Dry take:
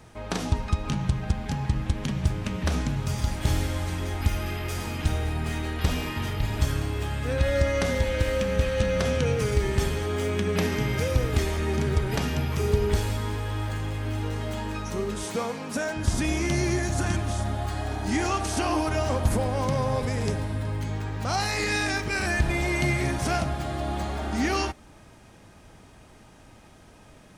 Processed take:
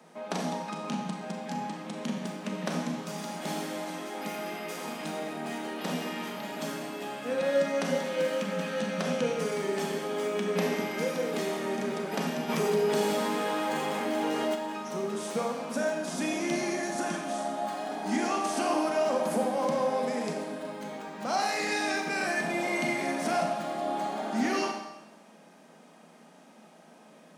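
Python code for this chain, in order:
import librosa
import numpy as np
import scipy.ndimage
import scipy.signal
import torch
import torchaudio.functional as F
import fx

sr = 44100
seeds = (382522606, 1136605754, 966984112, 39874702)

y = scipy.signal.sosfilt(scipy.signal.cheby1(6, 6, 160.0, 'highpass', fs=sr, output='sos'), x)
y = fx.rev_schroeder(y, sr, rt60_s=0.94, comb_ms=29, drr_db=3.0)
y = fx.env_flatten(y, sr, amount_pct=50, at=(12.48, 14.54), fade=0.02)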